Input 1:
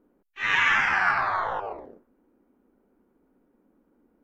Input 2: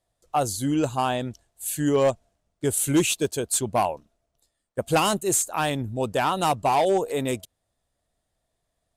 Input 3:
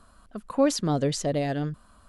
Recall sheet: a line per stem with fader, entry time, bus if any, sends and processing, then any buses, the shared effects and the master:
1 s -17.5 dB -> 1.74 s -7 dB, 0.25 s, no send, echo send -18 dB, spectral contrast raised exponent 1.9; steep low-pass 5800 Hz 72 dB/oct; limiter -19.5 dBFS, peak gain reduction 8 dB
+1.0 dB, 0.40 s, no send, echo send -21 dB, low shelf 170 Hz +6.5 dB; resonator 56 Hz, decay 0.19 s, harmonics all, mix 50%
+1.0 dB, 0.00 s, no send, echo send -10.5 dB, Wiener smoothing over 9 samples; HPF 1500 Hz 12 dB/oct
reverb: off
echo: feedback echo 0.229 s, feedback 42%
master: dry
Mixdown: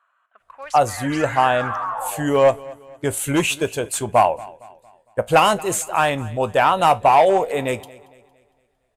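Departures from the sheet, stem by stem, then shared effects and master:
stem 1: entry 0.25 s -> 0.50 s; stem 3 +1.0 dB -> -7.5 dB; master: extra band shelf 1200 Hz +9.5 dB 2.8 oct

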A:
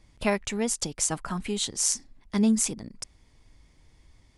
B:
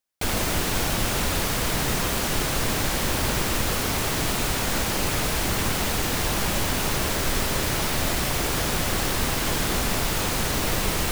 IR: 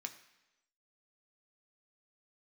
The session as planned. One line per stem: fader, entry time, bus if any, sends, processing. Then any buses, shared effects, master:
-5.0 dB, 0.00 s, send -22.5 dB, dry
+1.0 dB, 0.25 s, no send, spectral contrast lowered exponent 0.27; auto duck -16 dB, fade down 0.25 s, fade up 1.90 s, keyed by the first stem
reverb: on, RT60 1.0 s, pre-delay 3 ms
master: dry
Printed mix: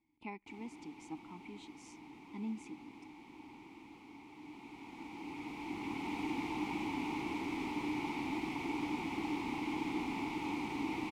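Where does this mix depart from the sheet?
stem B: missing spectral contrast lowered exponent 0.27; master: extra vowel filter u

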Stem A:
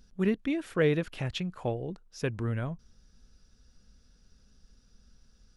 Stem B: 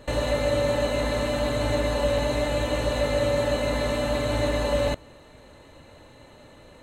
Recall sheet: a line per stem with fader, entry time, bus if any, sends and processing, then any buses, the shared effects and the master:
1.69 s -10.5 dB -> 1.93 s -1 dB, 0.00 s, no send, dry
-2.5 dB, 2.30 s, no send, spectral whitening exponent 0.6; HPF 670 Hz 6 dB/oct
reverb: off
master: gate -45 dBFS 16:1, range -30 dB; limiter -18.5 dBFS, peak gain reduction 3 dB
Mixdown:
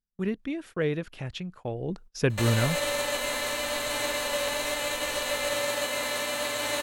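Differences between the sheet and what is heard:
stem A -10.5 dB -> -2.5 dB; master: missing limiter -18.5 dBFS, peak gain reduction 3 dB

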